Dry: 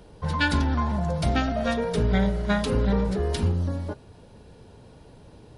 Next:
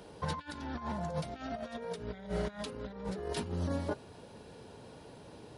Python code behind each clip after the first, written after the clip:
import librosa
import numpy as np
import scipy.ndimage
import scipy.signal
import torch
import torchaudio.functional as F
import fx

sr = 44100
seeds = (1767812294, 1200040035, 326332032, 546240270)

y = fx.highpass(x, sr, hz=250.0, slope=6)
y = fx.over_compress(y, sr, threshold_db=-33.0, ratio=-0.5)
y = y * 10.0 ** (-4.0 / 20.0)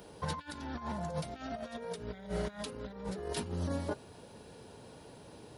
y = fx.high_shelf(x, sr, hz=8800.0, db=9.0)
y = y * 10.0 ** (-1.0 / 20.0)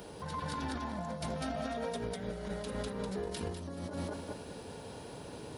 y = fx.echo_feedback(x, sr, ms=199, feedback_pct=35, wet_db=-3.5)
y = fx.over_compress(y, sr, threshold_db=-40.0, ratio=-1.0)
y = y * 10.0 ** (2.0 / 20.0)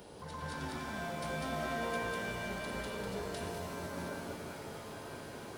y = fx.rev_shimmer(x, sr, seeds[0], rt60_s=3.2, semitones=7, shimmer_db=-2, drr_db=1.0)
y = y * 10.0 ** (-5.0 / 20.0)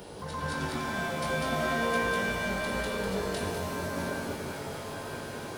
y = fx.doubler(x, sr, ms=21.0, db=-7.5)
y = y * 10.0 ** (7.0 / 20.0)